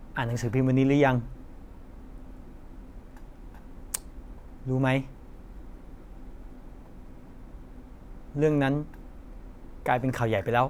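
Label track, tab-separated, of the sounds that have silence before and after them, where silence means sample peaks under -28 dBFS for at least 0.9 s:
3.940000	5.010000	sound
8.370000	8.830000	sound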